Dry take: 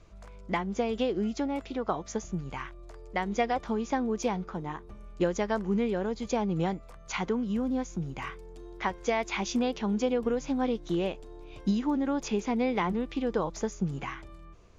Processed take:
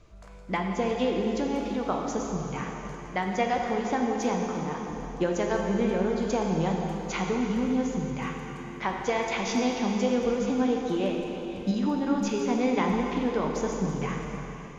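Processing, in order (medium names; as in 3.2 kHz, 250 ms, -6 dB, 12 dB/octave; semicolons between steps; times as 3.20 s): plate-style reverb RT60 3.8 s, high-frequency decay 0.9×, DRR 0 dB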